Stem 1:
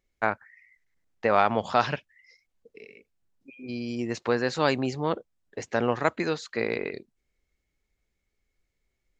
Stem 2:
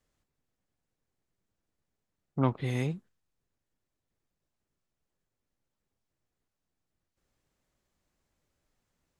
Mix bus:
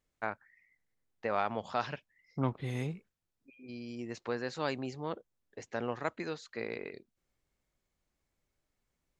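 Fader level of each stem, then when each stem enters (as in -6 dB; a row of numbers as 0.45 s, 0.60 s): -10.5 dB, -5.0 dB; 0.00 s, 0.00 s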